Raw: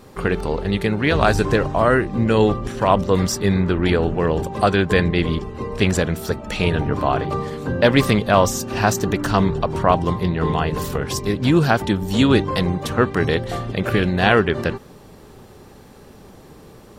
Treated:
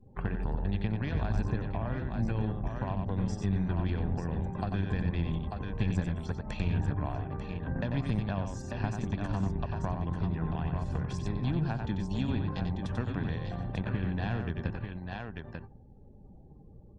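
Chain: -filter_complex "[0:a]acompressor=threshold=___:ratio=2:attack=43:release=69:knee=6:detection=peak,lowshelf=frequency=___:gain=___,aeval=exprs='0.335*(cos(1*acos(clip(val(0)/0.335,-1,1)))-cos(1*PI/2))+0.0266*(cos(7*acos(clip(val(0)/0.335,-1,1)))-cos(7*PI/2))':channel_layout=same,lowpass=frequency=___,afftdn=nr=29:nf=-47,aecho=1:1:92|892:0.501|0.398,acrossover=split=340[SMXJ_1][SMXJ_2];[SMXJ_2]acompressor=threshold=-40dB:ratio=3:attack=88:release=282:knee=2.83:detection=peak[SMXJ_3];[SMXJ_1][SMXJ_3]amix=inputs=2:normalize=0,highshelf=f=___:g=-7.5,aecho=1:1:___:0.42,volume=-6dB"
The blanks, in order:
-34dB, 110, 7, 9.2k, 4.9k, 1.2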